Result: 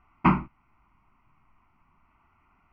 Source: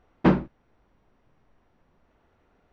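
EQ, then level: distance through air 170 m; high-order bell 1.6 kHz +9.5 dB; static phaser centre 2.5 kHz, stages 8; 0.0 dB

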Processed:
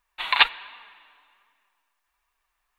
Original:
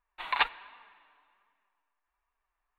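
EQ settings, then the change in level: treble shelf 2.2 kHz +9.5 dB; peaking EQ 3.5 kHz +3.5 dB 1.1 oct; +3.5 dB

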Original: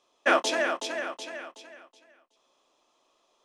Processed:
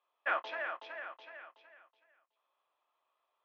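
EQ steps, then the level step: high-pass 1.2 kHz 12 dB/octave; distance through air 270 m; tape spacing loss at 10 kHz 33 dB; 0.0 dB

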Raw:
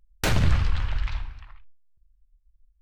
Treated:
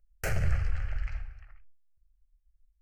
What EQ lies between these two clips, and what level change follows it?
static phaser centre 990 Hz, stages 6; -5.5 dB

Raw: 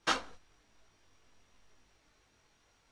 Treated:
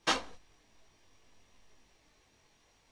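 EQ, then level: peaking EQ 1.4 kHz -8.5 dB 0.26 oct; hum notches 50/100 Hz; +2.5 dB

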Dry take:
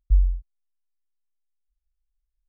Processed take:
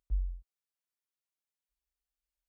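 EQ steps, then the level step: high-pass 75 Hz 12 dB/octave; peaking EQ 110 Hz -11.5 dB 2.3 oct; 0.0 dB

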